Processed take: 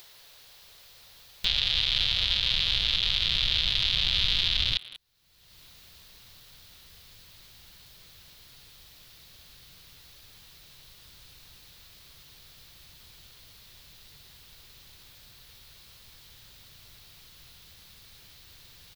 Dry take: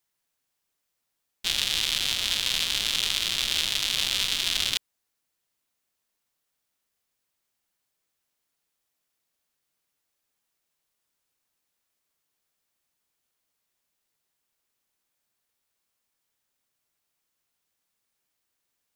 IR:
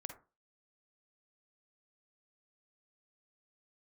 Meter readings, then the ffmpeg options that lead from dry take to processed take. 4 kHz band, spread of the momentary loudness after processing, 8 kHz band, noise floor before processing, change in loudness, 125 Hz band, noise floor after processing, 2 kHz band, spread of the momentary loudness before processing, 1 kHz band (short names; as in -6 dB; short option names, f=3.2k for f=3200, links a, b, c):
+1.0 dB, 3 LU, -14.5 dB, -80 dBFS, +0.5 dB, +8.5 dB, -54 dBFS, -1.5 dB, 3 LU, -4.0 dB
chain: -filter_complex "[0:a]acrossover=split=4600[a][b];[b]acompressor=threshold=-45dB:ratio=4:attack=1:release=60[c];[a][c]amix=inputs=2:normalize=0,equalizer=f=250:t=o:w=1:g=-9,equalizer=f=500:t=o:w=1:g=6,equalizer=f=4k:t=o:w=1:g=11,equalizer=f=8k:t=o:w=1:g=-7,asplit=2[d][e];[e]adelay=190,highpass=300,lowpass=3.4k,asoftclip=type=hard:threshold=-13.5dB,volume=-18dB[f];[d][f]amix=inputs=2:normalize=0,alimiter=limit=-11dB:level=0:latency=1:release=96,acompressor=mode=upward:threshold=-32dB:ratio=2.5,asubboost=boost=8.5:cutoff=180"